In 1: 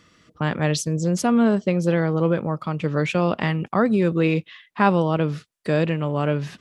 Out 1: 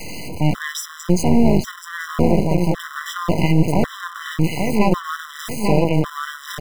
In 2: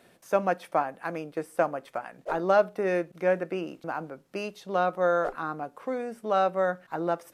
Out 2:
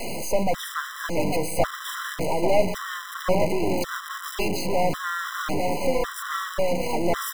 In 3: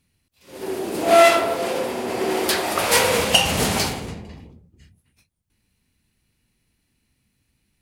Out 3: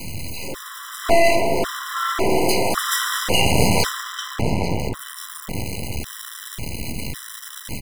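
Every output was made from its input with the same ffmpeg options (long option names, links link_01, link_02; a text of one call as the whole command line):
ffmpeg -i in.wav -filter_complex "[0:a]aeval=exprs='val(0)+0.5*0.0668*sgn(val(0))':channel_layout=same,adynamicequalizer=threshold=0.02:dfrequency=110:dqfactor=0.8:tfrequency=110:tqfactor=0.8:attack=5:release=100:ratio=0.375:range=3.5:mode=boostabove:tftype=bell,bandreject=frequency=82.26:width_type=h:width=4,bandreject=frequency=164.52:width_type=h:width=4,bandreject=frequency=246.78:width_type=h:width=4,bandreject=frequency=329.04:width_type=h:width=4,asplit=2[link_01][link_02];[link_02]adelay=841,lowpass=frequency=1900:poles=1,volume=-5dB,asplit=2[link_03][link_04];[link_04]adelay=841,lowpass=frequency=1900:poles=1,volume=0.37,asplit=2[link_05][link_06];[link_06]adelay=841,lowpass=frequency=1900:poles=1,volume=0.37,asplit=2[link_07][link_08];[link_08]adelay=841,lowpass=frequency=1900:poles=1,volume=0.37,asplit=2[link_09][link_10];[link_10]adelay=841,lowpass=frequency=1900:poles=1,volume=0.37[link_11];[link_03][link_05][link_07][link_09][link_11]amix=inputs=5:normalize=0[link_12];[link_01][link_12]amix=inputs=2:normalize=0,aeval=exprs='max(val(0),0)':channel_layout=same,alimiter=level_in=5.5dB:limit=-1dB:release=50:level=0:latency=1,afftfilt=real='re*gt(sin(2*PI*0.91*pts/sr)*(1-2*mod(floor(b*sr/1024/1000),2)),0)':imag='im*gt(sin(2*PI*0.91*pts/sr)*(1-2*mod(floor(b*sr/1024/1000),2)),0)':win_size=1024:overlap=0.75,volume=-1dB" out.wav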